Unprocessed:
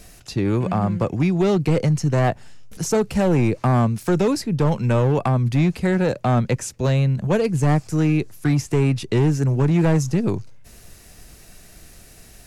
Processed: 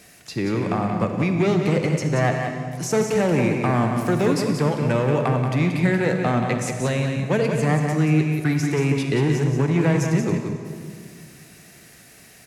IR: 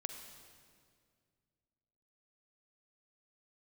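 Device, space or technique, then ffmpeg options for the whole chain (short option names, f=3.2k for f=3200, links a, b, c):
PA in a hall: -filter_complex "[0:a]highpass=130,equalizer=f=2k:t=o:w=0.76:g=6,aecho=1:1:181:0.473[a];[1:a]atrim=start_sample=2205[b];[a][b]afir=irnorm=-1:irlink=0"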